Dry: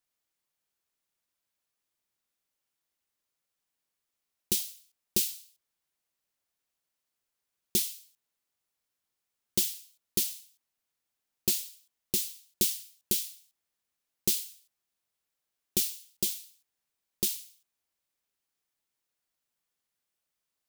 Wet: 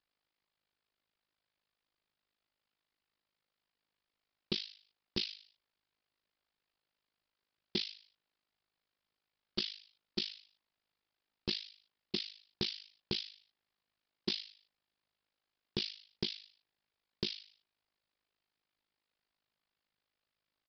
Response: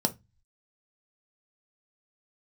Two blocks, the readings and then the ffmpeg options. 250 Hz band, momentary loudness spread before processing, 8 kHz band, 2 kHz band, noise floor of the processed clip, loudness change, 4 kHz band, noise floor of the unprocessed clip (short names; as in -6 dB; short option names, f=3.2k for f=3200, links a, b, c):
-2.5 dB, 12 LU, -29.5 dB, +0.5 dB, under -85 dBFS, -9.5 dB, -1.0 dB, -85 dBFS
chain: -af "tremolo=f=52:d=0.947,aresample=11025,asoftclip=type=tanh:threshold=-29dB,aresample=44100,volume=5.5dB"